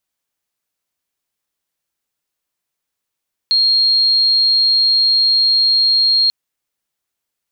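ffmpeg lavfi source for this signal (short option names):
-f lavfi -i "sine=f=4240:d=2.79:r=44100,volume=8.06dB"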